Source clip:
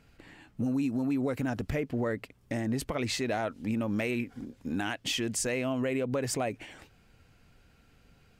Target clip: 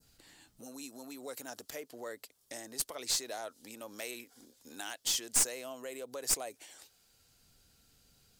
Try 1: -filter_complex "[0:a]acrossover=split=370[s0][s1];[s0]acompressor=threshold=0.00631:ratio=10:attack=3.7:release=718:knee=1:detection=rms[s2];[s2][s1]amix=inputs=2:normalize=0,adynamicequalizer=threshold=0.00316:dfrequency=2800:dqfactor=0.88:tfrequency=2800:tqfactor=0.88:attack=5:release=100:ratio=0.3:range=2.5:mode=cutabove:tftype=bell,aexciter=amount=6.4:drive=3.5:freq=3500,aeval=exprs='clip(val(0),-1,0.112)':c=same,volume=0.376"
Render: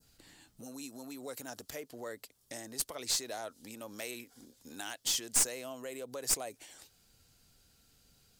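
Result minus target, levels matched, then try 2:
compression: peak gain reduction -8 dB
-filter_complex "[0:a]acrossover=split=370[s0][s1];[s0]acompressor=threshold=0.00224:ratio=10:attack=3.7:release=718:knee=1:detection=rms[s2];[s2][s1]amix=inputs=2:normalize=0,adynamicequalizer=threshold=0.00316:dfrequency=2800:dqfactor=0.88:tfrequency=2800:tqfactor=0.88:attack=5:release=100:ratio=0.3:range=2.5:mode=cutabove:tftype=bell,aexciter=amount=6.4:drive=3.5:freq=3500,aeval=exprs='clip(val(0),-1,0.112)':c=same,volume=0.376"

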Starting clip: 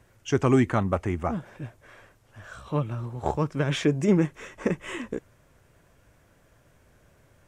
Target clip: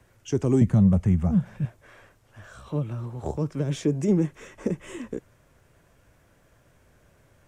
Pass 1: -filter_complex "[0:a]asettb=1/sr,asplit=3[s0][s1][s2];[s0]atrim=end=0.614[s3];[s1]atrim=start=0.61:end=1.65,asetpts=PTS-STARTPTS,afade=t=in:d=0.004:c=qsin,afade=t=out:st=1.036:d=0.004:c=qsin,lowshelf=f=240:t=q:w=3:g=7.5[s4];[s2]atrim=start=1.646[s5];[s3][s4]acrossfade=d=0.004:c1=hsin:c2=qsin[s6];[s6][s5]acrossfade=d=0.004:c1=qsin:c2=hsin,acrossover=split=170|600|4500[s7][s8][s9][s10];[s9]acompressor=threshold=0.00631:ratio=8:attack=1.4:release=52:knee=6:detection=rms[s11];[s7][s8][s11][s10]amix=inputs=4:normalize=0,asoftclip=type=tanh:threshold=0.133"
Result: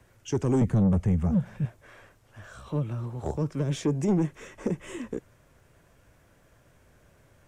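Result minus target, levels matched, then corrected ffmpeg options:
saturation: distortion +14 dB
-filter_complex "[0:a]asettb=1/sr,asplit=3[s0][s1][s2];[s0]atrim=end=0.614[s3];[s1]atrim=start=0.61:end=1.65,asetpts=PTS-STARTPTS,afade=t=in:d=0.004:c=qsin,afade=t=out:st=1.036:d=0.004:c=qsin,lowshelf=f=240:t=q:w=3:g=7.5[s4];[s2]atrim=start=1.646[s5];[s3][s4]acrossfade=d=0.004:c1=hsin:c2=qsin[s6];[s6][s5]acrossfade=d=0.004:c1=qsin:c2=hsin,acrossover=split=170|600|4500[s7][s8][s9][s10];[s9]acompressor=threshold=0.00631:ratio=8:attack=1.4:release=52:knee=6:detection=rms[s11];[s7][s8][s11][s10]amix=inputs=4:normalize=0,asoftclip=type=tanh:threshold=0.447"

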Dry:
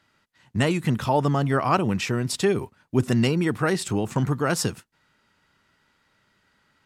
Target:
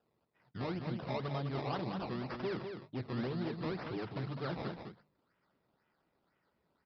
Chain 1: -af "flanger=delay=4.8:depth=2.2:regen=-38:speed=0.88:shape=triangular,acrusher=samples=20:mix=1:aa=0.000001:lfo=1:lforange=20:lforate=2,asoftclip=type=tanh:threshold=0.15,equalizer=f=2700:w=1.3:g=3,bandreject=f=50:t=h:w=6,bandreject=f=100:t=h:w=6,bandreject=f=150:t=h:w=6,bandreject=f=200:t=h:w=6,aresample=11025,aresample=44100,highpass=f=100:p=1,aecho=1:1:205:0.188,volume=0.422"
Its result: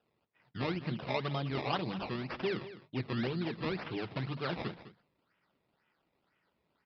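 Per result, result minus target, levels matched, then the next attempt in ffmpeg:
saturation: distortion -9 dB; echo-to-direct -8 dB; 2 kHz band +3.5 dB
-af "flanger=delay=4.8:depth=2.2:regen=-38:speed=0.88:shape=triangular,acrusher=samples=20:mix=1:aa=0.000001:lfo=1:lforange=20:lforate=2,asoftclip=type=tanh:threshold=0.0596,equalizer=f=2700:w=1.3:g=3,bandreject=f=50:t=h:w=6,bandreject=f=100:t=h:w=6,bandreject=f=150:t=h:w=6,bandreject=f=200:t=h:w=6,aresample=11025,aresample=44100,highpass=f=100:p=1,aecho=1:1:205:0.188,volume=0.422"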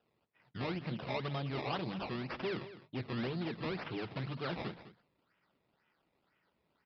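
echo-to-direct -8 dB; 2 kHz band +3.5 dB
-af "flanger=delay=4.8:depth=2.2:regen=-38:speed=0.88:shape=triangular,acrusher=samples=20:mix=1:aa=0.000001:lfo=1:lforange=20:lforate=2,asoftclip=type=tanh:threshold=0.0596,equalizer=f=2700:w=1.3:g=3,bandreject=f=50:t=h:w=6,bandreject=f=100:t=h:w=6,bandreject=f=150:t=h:w=6,bandreject=f=200:t=h:w=6,aresample=11025,aresample=44100,highpass=f=100:p=1,aecho=1:1:205:0.473,volume=0.422"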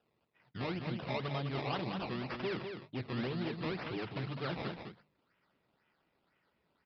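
2 kHz band +3.5 dB
-af "flanger=delay=4.8:depth=2.2:regen=-38:speed=0.88:shape=triangular,acrusher=samples=20:mix=1:aa=0.000001:lfo=1:lforange=20:lforate=2,asoftclip=type=tanh:threshold=0.0596,equalizer=f=2700:w=1.3:g=-4.5,bandreject=f=50:t=h:w=6,bandreject=f=100:t=h:w=6,bandreject=f=150:t=h:w=6,bandreject=f=200:t=h:w=6,aresample=11025,aresample=44100,highpass=f=100:p=1,aecho=1:1:205:0.473,volume=0.422"

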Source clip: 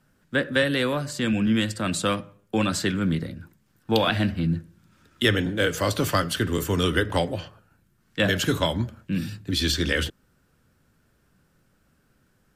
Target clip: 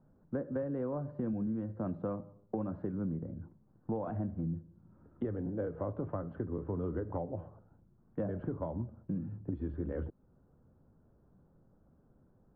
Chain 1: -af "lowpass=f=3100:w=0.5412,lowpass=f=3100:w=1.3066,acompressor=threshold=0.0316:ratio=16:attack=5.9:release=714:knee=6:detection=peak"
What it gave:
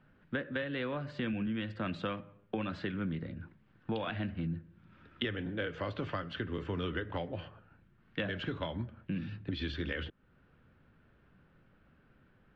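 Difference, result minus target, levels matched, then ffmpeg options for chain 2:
1 kHz band +3.0 dB
-af "lowpass=f=930:w=0.5412,lowpass=f=930:w=1.3066,acompressor=threshold=0.0316:ratio=16:attack=5.9:release=714:knee=6:detection=peak"

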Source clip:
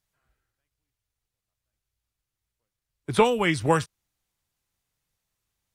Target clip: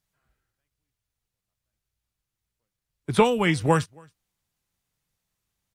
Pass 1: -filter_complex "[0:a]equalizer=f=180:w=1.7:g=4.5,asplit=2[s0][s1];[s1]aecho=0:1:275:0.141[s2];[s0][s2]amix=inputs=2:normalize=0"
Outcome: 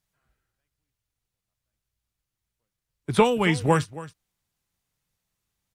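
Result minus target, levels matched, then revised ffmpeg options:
echo-to-direct +12 dB
-filter_complex "[0:a]equalizer=f=180:w=1.7:g=4.5,asplit=2[s0][s1];[s1]aecho=0:1:275:0.0355[s2];[s0][s2]amix=inputs=2:normalize=0"

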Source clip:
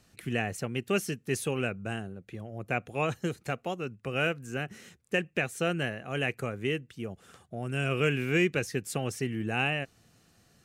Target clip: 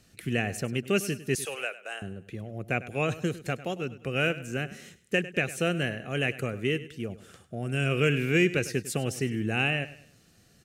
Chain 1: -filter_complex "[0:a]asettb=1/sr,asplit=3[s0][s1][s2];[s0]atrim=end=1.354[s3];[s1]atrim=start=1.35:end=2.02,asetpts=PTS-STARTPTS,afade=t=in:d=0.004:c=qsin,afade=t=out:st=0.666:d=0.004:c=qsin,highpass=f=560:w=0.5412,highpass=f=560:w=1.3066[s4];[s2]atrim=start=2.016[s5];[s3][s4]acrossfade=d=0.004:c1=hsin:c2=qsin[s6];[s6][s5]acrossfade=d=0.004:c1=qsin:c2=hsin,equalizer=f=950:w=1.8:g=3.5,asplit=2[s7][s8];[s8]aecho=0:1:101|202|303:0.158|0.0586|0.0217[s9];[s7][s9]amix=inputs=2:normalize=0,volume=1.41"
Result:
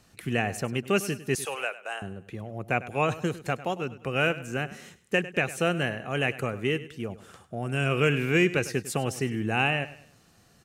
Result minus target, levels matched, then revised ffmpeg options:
1 kHz band +5.0 dB
-filter_complex "[0:a]asettb=1/sr,asplit=3[s0][s1][s2];[s0]atrim=end=1.354[s3];[s1]atrim=start=1.35:end=2.02,asetpts=PTS-STARTPTS,afade=t=in:d=0.004:c=qsin,afade=t=out:st=0.666:d=0.004:c=qsin,highpass=f=560:w=0.5412,highpass=f=560:w=1.3066[s4];[s2]atrim=start=2.016[s5];[s3][s4]acrossfade=d=0.004:c1=hsin:c2=qsin[s6];[s6][s5]acrossfade=d=0.004:c1=qsin:c2=hsin,equalizer=f=950:w=1.8:g=-7.5,asplit=2[s7][s8];[s8]aecho=0:1:101|202|303:0.158|0.0586|0.0217[s9];[s7][s9]amix=inputs=2:normalize=0,volume=1.41"

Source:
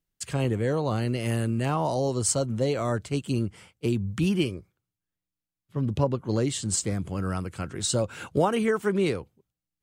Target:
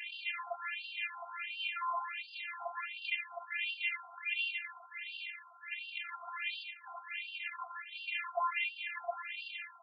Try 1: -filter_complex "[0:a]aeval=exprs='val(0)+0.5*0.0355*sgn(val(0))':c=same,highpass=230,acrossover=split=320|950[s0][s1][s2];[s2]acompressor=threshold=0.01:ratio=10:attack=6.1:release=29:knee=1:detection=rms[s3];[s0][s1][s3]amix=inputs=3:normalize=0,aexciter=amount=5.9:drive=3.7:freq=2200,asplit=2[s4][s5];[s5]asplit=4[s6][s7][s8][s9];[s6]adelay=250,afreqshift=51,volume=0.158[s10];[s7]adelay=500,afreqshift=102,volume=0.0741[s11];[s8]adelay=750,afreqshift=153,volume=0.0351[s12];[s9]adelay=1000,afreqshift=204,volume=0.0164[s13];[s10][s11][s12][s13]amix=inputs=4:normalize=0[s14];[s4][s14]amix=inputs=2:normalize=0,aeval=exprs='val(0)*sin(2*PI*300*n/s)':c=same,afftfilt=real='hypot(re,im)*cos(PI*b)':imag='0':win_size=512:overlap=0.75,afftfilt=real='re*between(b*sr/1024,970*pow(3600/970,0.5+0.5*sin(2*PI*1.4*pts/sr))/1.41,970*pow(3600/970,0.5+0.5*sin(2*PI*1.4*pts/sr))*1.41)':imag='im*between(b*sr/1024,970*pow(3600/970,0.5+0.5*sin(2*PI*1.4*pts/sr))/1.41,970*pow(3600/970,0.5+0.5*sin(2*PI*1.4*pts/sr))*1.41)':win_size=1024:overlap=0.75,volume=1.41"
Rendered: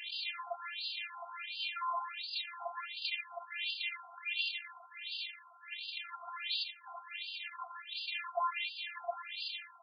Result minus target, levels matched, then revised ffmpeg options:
4 kHz band +4.5 dB
-filter_complex "[0:a]aeval=exprs='val(0)+0.5*0.0355*sgn(val(0))':c=same,highpass=230,acrossover=split=320|950[s0][s1][s2];[s2]acompressor=threshold=0.01:ratio=10:attack=6.1:release=29:knee=1:detection=rms,highshelf=f=3100:t=q:w=3:g=-9[s3];[s0][s1][s3]amix=inputs=3:normalize=0,aexciter=amount=5.9:drive=3.7:freq=2200,asplit=2[s4][s5];[s5]asplit=4[s6][s7][s8][s9];[s6]adelay=250,afreqshift=51,volume=0.158[s10];[s7]adelay=500,afreqshift=102,volume=0.0741[s11];[s8]adelay=750,afreqshift=153,volume=0.0351[s12];[s9]adelay=1000,afreqshift=204,volume=0.0164[s13];[s10][s11][s12][s13]amix=inputs=4:normalize=0[s14];[s4][s14]amix=inputs=2:normalize=0,aeval=exprs='val(0)*sin(2*PI*300*n/s)':c=same,afftfilt=real='hypot(re,im)*cos(PI*b)':imag='0':win_size=512:overlap=0.75,afftfilt=real='re*between(b*sr/1024,970*pow(3600/970,0.5+0.5*sin(2*PI*1.4*pts/sr))/1.41,970*pow(3600/970,0.5+0.5*sin(2*PI*1.4*pts/sr))*1.41)':imag='im*between(b*sr/1024,970*pow(3600/970,0.5+0.5*sin(2*PI*1.4*pts/sr))/1.41,970*pow(3600/970,0.5+0.5*sin(2*PI*1.4*pts/sr))*1.41)':win_size=1024:overlap=0.75,volume=1.41"

